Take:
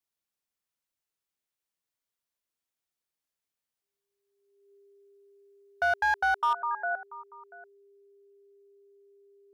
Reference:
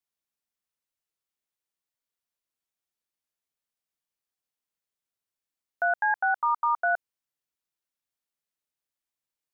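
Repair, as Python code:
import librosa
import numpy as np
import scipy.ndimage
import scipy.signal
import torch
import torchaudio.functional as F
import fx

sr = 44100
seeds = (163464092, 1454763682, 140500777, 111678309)

y = fx.fix_declip(x, sr, threshold_db=-20.0)
y = fx.notch(y, sr, hz=400.0, q=30.0)
y = fx.fix_echo_inverse(y, sr, delay_ms=687, level_db=-18.5)
y = fx.gain(y, sr, db=fx.steps((0.0, 0.0), (6.53, 6.0)))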